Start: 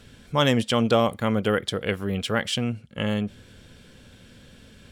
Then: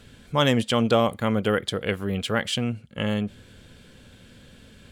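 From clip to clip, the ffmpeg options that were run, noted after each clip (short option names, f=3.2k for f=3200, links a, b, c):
-af "bandreject=f=5.5k:w=13"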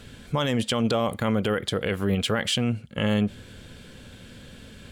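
-af "alimiter=limit=-19.5dB:level=0:latency=1:release=49,volume=4.5dB"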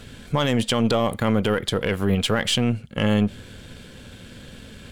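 -af "aeval=exprs='if(lt(val(0),0),0.708*val(0),val(0))':c=same,volume=4.5dB"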